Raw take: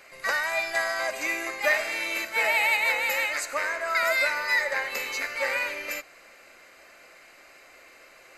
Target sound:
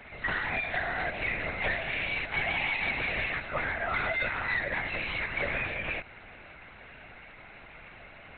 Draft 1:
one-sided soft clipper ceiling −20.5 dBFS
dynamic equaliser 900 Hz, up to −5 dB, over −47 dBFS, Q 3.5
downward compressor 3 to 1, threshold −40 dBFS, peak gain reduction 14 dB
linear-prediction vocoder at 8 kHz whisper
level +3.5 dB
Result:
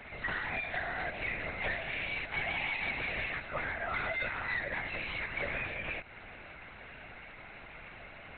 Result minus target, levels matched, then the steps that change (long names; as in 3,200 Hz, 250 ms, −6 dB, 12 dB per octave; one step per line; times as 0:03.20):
downward compressor: peak gain reduction +4.5 dB
change: downward compressor 3 to 1, threshold −33 dBFS, peak gain reduction 9.5 dB